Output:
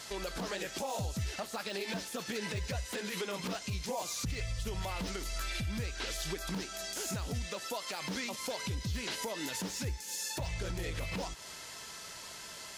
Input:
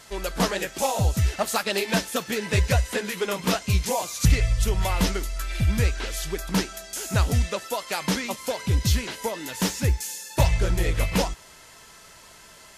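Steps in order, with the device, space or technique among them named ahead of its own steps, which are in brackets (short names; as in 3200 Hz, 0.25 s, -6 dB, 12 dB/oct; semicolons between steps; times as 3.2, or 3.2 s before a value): broadcast voice chain (HPF 79 Hz 6 dB/oct; de-esser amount 70%; compressor 4:1, threshold -33 dBFS, peak gain reduction 14 dB; bell 4700 Hz +5 dB 1.4 oct; limiter -27.5 dBFS, peak gain reduction 8.5 dB)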